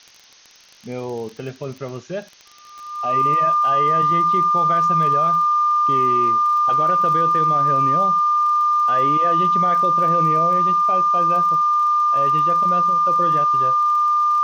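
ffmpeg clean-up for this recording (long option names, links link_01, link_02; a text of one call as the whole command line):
ffmpeg -i in.wav -af "adeclick=threshold=4,bandreject=frequency=1200:width=30,afftdn=noise_reduction=22:noise_floor=-44" out.wav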